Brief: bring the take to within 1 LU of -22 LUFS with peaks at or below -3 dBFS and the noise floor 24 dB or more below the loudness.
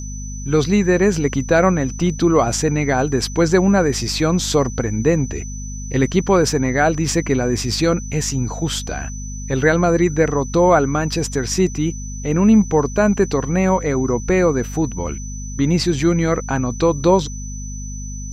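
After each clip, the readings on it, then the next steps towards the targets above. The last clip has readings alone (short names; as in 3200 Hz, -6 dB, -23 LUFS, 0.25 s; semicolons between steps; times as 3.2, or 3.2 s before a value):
hum 50 Hz; harmonics up to 250 Hz; hum level -27 dBFS; steady tone 6000 Hz; tone level -34 dBFS; loudness -18.0 LUFS; peak -2.0 dBFS; loudness target -22.0 LUFS
-> notches 50/100/150/200/250 Hz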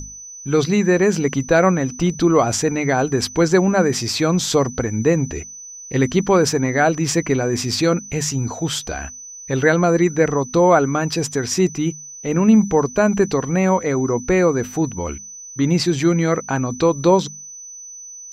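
hum none; steady tone 6000 Hz; tone level -34 dBFS
-> notch 6000 Hz, Q 30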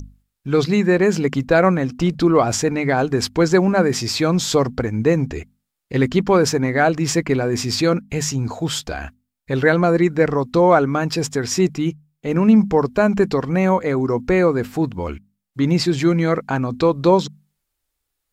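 steady tone none; loudness -18.5 LUFS; peak -2.0 dBFS; loudness target -22.0 LUFS
-> gain -3.5 dB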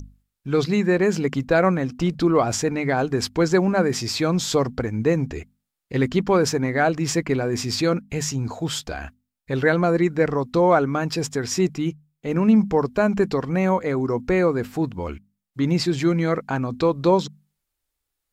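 loudness -22.0 LUFS; peak -5.5 dBFS; noise floor -81 dBFS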